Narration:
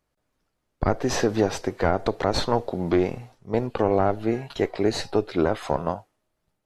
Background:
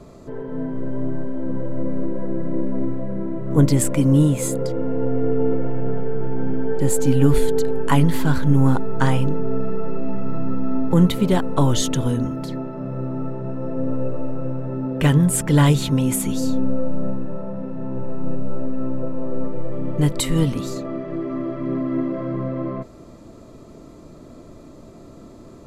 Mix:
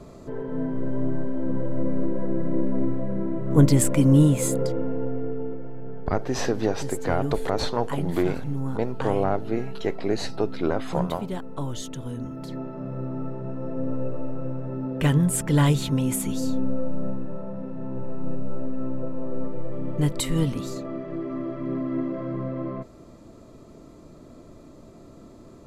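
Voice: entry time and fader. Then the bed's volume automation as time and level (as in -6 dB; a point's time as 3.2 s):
5.25 s, -3.0 dB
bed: 4.64 s -1 dB
5.59 s -13.5 dB
12.02 s -13.5 dB
12.62 s -4.5 dB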